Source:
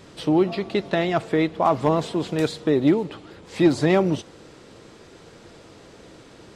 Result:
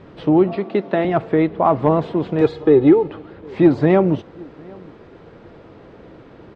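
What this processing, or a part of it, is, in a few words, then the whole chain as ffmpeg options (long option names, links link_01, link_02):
phone in a pocket: -filter_complex "[0:a]asettb=1/sr,asplit=3[link_01][link_02][link_03];[link_01]atrim=end=0.564[link_04];[link_02]atrim=start=0.56:end=1.05,asetpts=PTS-STARTPTS,afade=type=in:duration=0.004:curve=qsin,afade=type=out:start_time=0.486:duration=0.004:curve=qsin,highpass=frequency=180:width=0.5412,highpass=frequency=180:width=1.3066[link_05];[link_03]atrim=start=1.046[link_06];[link_04][link_05]acrossfade=duration=0.004:curve1=hsin:curve2=qsin[link_07];[link_07][link_06]acrossfade=duration=0.004:curve1=qsin:curve2=hsin,asettb=1/sr,asplit=3[link_08][link_09][link_10];[link_08]atrim=end=2.414[link_11];[link_09]atrim=start=2.41:end=3.08,asetpts=PTS-STARTPTS,afade=type=in:duration=0.004:curve=qsin,afade=type=out:start_time=0.666:duration=0.004:curve=qsin,aecho=1:1:2.4:0.79,atrim=end_sample=29547[link_12];[link_10]atrim=start=3.076[link_13];[link_11][link_12]acrossfade=duration=0.004:curve1=hsin:curve2=qsin[link_14];[link_14][link_13]acrossfade=duration=0.004:curve1=qsin:curve2=hsin,lowpass=3100,highshelf=frequency=2400:gain=-11.5,asplit=2[link_15][link_16];[link_16]adelay=758,volume=-25dB,highshelf=frequency=4000:gain=-17.1[link_17];[link_15][link_17]amix=inputs=2:normalize=0,volume=5dB"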